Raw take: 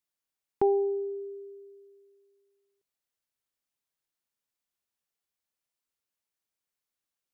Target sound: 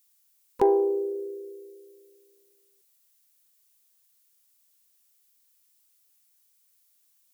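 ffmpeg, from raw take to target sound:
-filter_complex "[0:a]asplit=4[a][b][c][d];[b]asetrate=37084,aresample=44100,atempo=1.18921,volume=-13dB[e];[c]asetrate=52444,aresample=44100,atempo=0.840896,volume=-17dB[f];[d]asetrate=55563,aresample=44100,atempo=0.793701,volume=-16dB[g];[a][e][f][g]amix=inputs=4:normalize=0,crystalizer=i=6:c=0,acontrast=77,volume=-4dB"

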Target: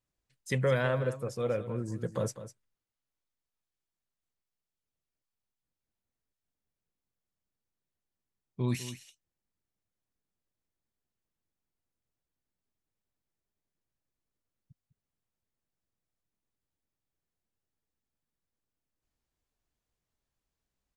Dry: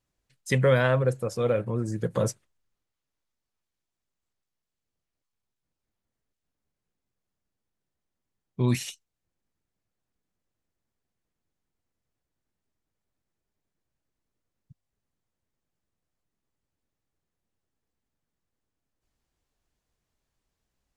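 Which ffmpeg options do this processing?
-af "aecho=1:1:202:0.224,volume=-6.5dB"

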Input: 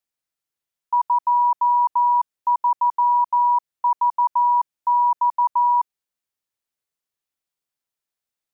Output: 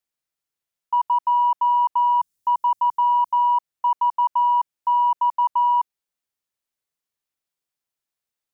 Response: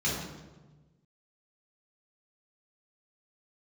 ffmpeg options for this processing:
-filter_complex "[0:a]asettb=1/sr,asplit=3[a][b][c];[a]atrim=end=2.184[d];[b]atrim=start=2.18:end=3.34,asetpts=PTS-STARTPTS,afade=t=in:d=0.004:c=qsin,afade=t=out:st=1.156:d=0.004:c=qsin,bass=f=250:g=11,treble=f=4k:g=11[e];[c]atrim=start=3.336[f];[d][e]acrossfade=d=0.004:c1=hsin:c2=qsin[g];[g][f]acrossfade=d=0.004:c1=qsin:c2=hsin,acontrast=57,volume=-6.5dB"

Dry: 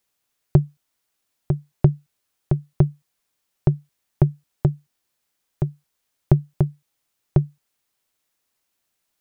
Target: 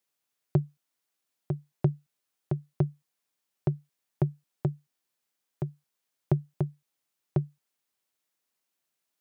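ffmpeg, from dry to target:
-af "highpass=130,volume=-7dB"

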